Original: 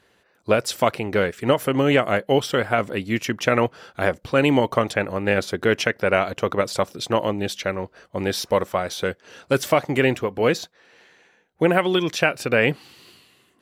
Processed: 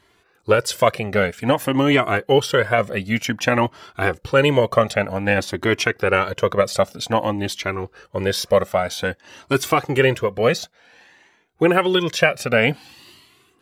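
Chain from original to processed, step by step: Shepard-style flanger rising 0.53 Hz; trim +7 dB

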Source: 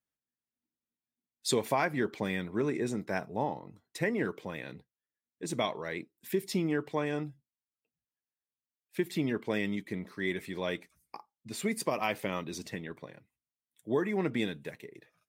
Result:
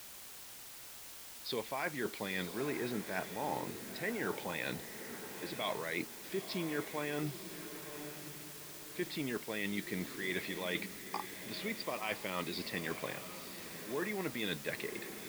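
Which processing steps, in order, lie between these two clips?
tilt EQ +2 dB/octave; reverse; compression 10:1, threshold -44 dBFS, peak gain reduction 21.5 dB; reverse; resampled via 11.025 kHz; word length cut 10-bit, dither triangular; echo that smears into a reverb 950 ms, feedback 42%, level -10 dB; trim +9.5 dB

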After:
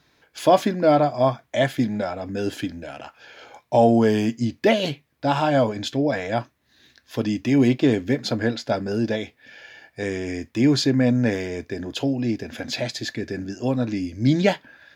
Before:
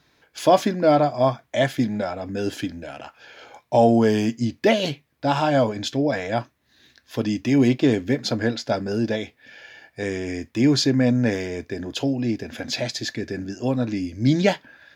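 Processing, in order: dynamic bell 5.7 kHz, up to -4 dB, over -44 dBFS, Q 2.3

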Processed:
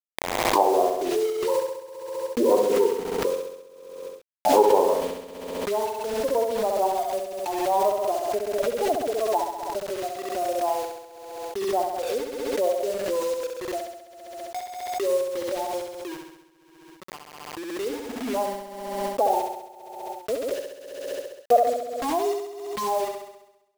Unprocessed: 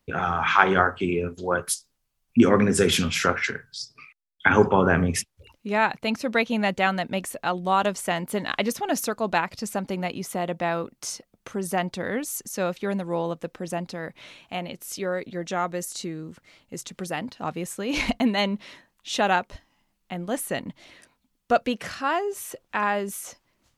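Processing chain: comb filter that takes the minimum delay 0.36 ms; high-pass 440 Hz 24 dB/octave; spectral noise reduction 22 dB; elliptic low-pass 950 Hz, stop band 50 dB; in parallel at -2 dB: compression 8:1, threshold -40 dBFS, peak gain reduction 21.5 dB; on the sum: bit crusher 7-bit; flutter echo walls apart 11.4 m, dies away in 0.89 s; swell ahead of each attack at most 39 dB/s; trim +4 dB

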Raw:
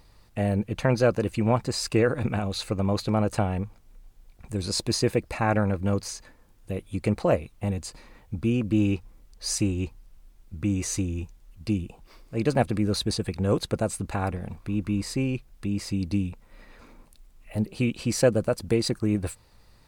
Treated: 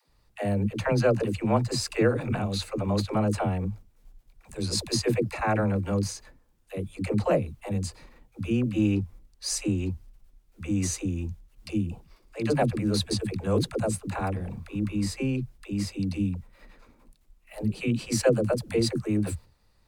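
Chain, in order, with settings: gate -48 dBFS, range -8 dB; phase dispersion lows, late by 95 ms, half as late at 300 Hz; trim -1 dB

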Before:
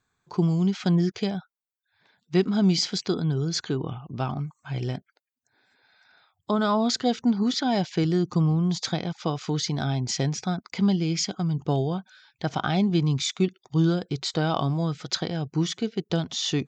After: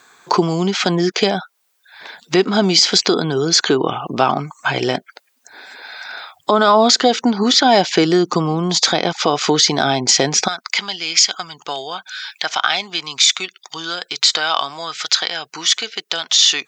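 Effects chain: compression 2:1, threshold -42 dBFS, peak gain reduction 14.5 dB; high-pass 410 Hz 12 dB/octave, from 10.48 s 1.4 kHz; loudness maximiser +29 dB; trim -1 dB

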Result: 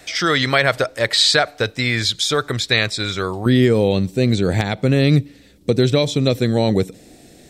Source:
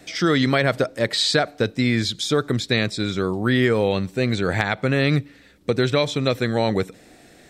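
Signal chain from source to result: peaking EQ 230 Hz -12 dB 1.9 oct, from 3.46 s 1.4 kHz; trim +6.5 dB

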